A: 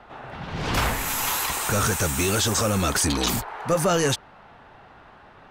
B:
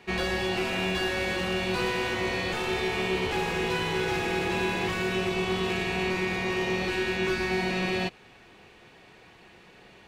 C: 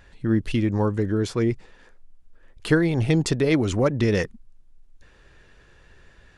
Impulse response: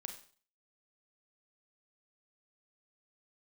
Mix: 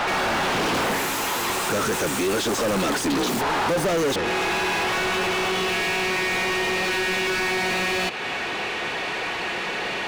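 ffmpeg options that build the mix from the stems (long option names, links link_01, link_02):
-filter_complex "[0:a]highpass=230,volume=1.5dB[link_01];[1:a]volume=-4dB[link_02];[2:a]volume=-9dB[link_03];[link_02][link_03]amix=inputs=2:normalize=0,alimiter=level_in=8dB:limit=-24dB:level=0:latency=1:release=251,volume=-8dB,volume=0dB[link_04];[link_01][link_04]amix=inputs=2:normalize=0,acrossover=split=460[link_05][link_06];[link_06]acompressor=threshold=-36dB:ratio=6[link_07];[link_05][link_07]amix=inputs=2:normalize=0,asplit=2[link_08][link_09];[link_09]highpass=frequency=720:poles=1,volume=42dB,asoftclip=type=tanh:threshold=-16dB[link_10];[link_08][link_10]amix=inputs=2:normalize=0,lowpass=frequency=3600:poles=1,volume=-6dB"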